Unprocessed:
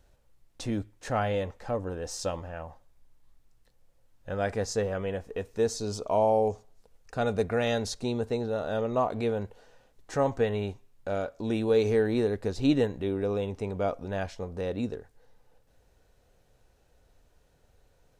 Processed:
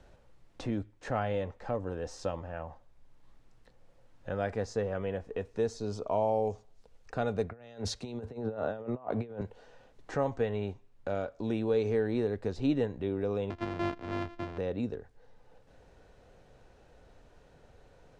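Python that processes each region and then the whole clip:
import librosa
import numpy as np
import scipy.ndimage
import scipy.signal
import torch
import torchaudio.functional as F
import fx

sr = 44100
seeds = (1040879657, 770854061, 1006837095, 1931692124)

y = fx.chain(x, sr, fx.highpass(hz=40.0, slope=12),
    fx.over_compress(threshold_db=-33.0, ratio=-0.5),
    fx.band_widen(depth_pct=100), at=(7.5, 9.41))
y = fx.chain(y, sr, fx.sample_sort(block=128),
    fx.lowpass(hz=4400.0, slope=12),
    fx.peak_eq(hz=180.0, db=-5.0, octaves=0.27), at=(13.5, 14.58))
y = scipy.signal.sosfilt(scipy.signal.butter(2, 9200.0, 'lowpass', fs=sr, output='sos'), y)
y = fx.high_shelf(y, sr, hz=4300.0, db=-11.0)
y = fx.band_squash(y, sr, depth_pct=40)
y = y * librosa.db_to_amplitude(-3.0)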